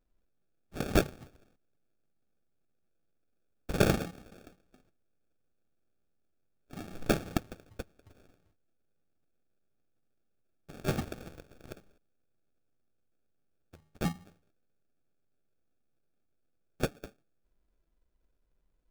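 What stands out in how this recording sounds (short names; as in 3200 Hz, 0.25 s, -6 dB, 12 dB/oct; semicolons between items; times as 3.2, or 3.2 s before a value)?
phasing stages 2, 0.49 Hz, lowest notch 360–1000 Hz; aliases and images of a low sample rate 1000 Hz, jitter 0%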